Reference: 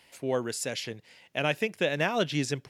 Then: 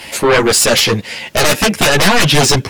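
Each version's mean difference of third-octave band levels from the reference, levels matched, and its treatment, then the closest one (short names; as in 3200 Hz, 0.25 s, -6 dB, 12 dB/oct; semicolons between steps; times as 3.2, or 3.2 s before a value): 9.5 dB: in parallel at -2.5 dB: compressor, threshold -35 dBFS, peak gain reduction 13.5 dB; on the sum: sine folder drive 17 dB, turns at -10.5 dBFS; ensemble effect; gain +6.5 dB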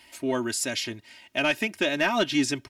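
3.0 dB: bell 530 Hz -7 dB 0.61 oct; comb 3.2 ms, depth 77%; soft clip -15.5 dBFS, distortion -22 dB; gain +4 dB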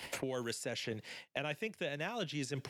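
6.5 dB: reverse; compressor 10:1, threshold -39 dBFS, peak gain reduction 18 dB; reverse; gate -59 dBFS, range -21 dB; three-band squash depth 100%; gain +3 dB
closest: second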